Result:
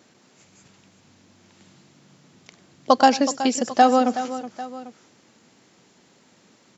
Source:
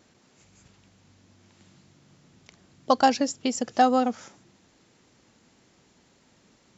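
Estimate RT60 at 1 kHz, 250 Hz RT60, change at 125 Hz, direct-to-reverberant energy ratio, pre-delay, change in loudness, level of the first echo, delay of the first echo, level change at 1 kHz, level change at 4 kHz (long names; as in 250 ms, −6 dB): no reverb audible, no reverb audible, can't be measured, no reverb audible, no reverb audible, +3.5 dB, −19.0 dB, 97 ms, +5.0 dB, +5.0 dB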